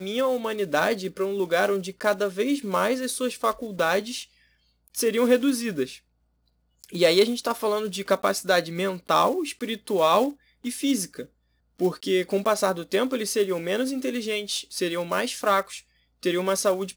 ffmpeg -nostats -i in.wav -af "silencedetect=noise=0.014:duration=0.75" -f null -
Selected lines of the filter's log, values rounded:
silence_start: 5.97
silence_end: 6.84 | silence_duration: 0.87